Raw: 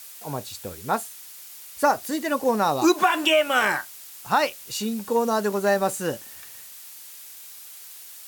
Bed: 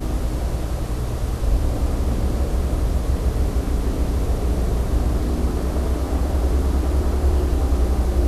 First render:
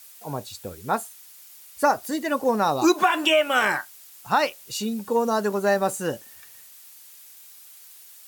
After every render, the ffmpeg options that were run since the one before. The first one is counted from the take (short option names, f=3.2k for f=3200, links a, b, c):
-af "afftdn=nr=6:nf=-43"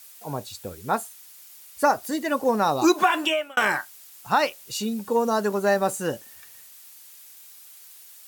-filter_complex "[0:a]asplit=2[a][b];[a]atrim=end=3.57,asetpts=PTS-STARTPTS,afade=t=out:st=3.15:d=0.42[c];[b]atrim=start=3.57,asetpts=PTS-STARTPTS,afade=t=in:d=0.004:c=hsin[d];[c][d]concat=n=2:v=0:a=1"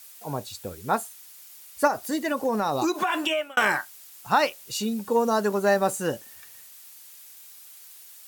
-filter_complex "[0:a]asettb=1/sr,asplit=3[a][b][c];[a]atrim=end=1.874[d];[b]atrim=start=1.87:end=3.43,asetpts=PTS-STARTPTS,afade=t=in:d=0.004:c=qsin,afade=t=out:st=1.556:d=0.004:c=qsin,acompressor=threshold=-20dB:ratio=6:attack=3.2:release=140:knee=1:detection=peak[e];[c]atrim=start=3.426[f];[d][e]acrossfade=d=0.004:c1=hsin:c2=qsin[g];[g][f]acrossfade=d=0.004:c1=qsin:c2=hsin"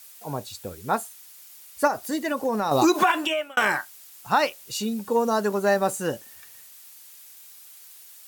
-filter_complex "[0:a]asettb=1/sr,asplit=3[a][b][c];[a]atrim=end=2.714[d];[b]atrim=start=2.71:end=3.12,asetpts=PTS-STARTPTS,afade=t=in:d=0.004:c=qsin,afade=t=out:st=0.406:d=0.004:c=qsin,acontrast=63[e];[c]atrim=start=3.116[f];[d][e]acrossfade=d=0.004:c1=hsin:c2=qsin[g];[g][f]acrossfade=d=0.004:c1=qsin:c2=hsin"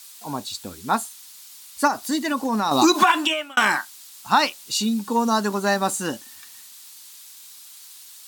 -af "equalizer=f=125:t=o:w=1:g=-6,equalizer=f=250:t=o:w=1:g=9,equalizer=f=500:t=o:w=1:g=-8,equalizer=f=1k:t=o:w=1:g=6,equalizer=f=4k:t=o:w=1:g=8,equalizer=f=8k:t=o:w=1:g=5"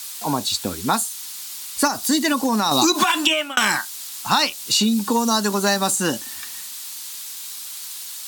-filter_complex "[0:a]acrossover=split=160|3200[a][b][c];[a]acompressor=threshold=-44dB:ratio=4[d];[b]acompressor=threshold=-30dB:ratio=4[e];[c]acompressor=threshold=-30dB:ratio=4[f];[d][e][f]amix=inputs=3:normalize=0,alimiter=level_in=10.5dB:limit=-1dB:release=50:level=0:latency=1"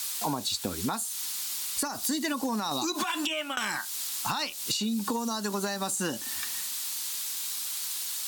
-af "alimiter=limit=-11dB:level=0:latency=1:release=287,acompressor=threshold=-27dB:ratio=6"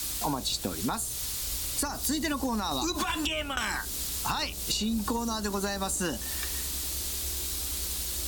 -filter_complex "[1:a]volume=-22dB[a];[0:a][a]amix=inputs=2:normalize=0"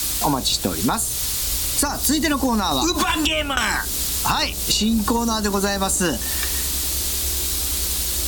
-af "volume=10dB"